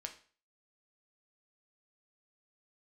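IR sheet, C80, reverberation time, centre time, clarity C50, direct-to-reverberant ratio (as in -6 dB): 16.5 dB, 0.40 s, 11 ms, 12.0 dB, 3.5 dB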